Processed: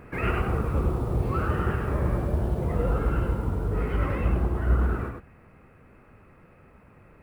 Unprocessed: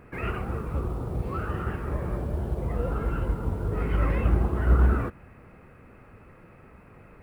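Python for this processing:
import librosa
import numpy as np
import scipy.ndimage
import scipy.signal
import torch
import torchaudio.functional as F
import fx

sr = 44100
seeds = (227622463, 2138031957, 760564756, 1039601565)

p1 = fx.rider(x, sr, range_db=4, speed_s=2.0)
y = p1 + fx.echo_single(p1, sr, ms=101, db=-5.0, dry=0)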